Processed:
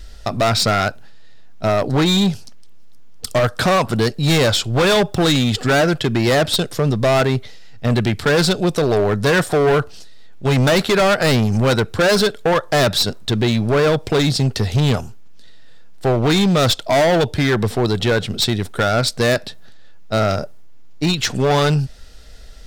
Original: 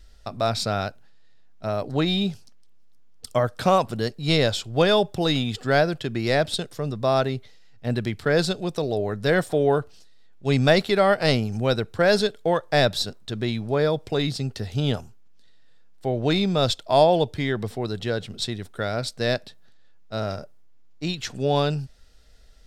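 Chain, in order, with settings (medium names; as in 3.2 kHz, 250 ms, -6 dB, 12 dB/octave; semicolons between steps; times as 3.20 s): dynamic bell 1.4 kHz, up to +5 dB, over -36 dBFS, Q 1.7; in parallel at -1 dB: compression, threshold -28 dBFS, peak gain reduction 16 dB; on the sum: overload inside the chain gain 20 dB; trim +8 dB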